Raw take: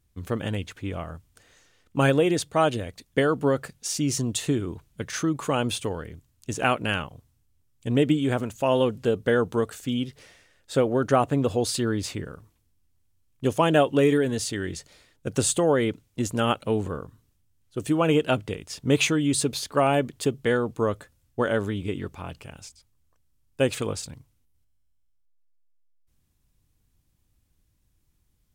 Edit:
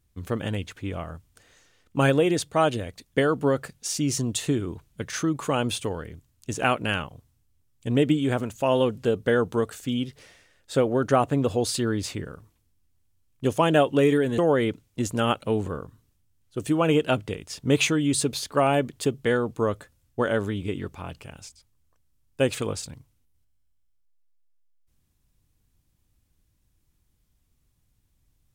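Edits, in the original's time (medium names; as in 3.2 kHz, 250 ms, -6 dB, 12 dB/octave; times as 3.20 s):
14.38–15.58 s: delete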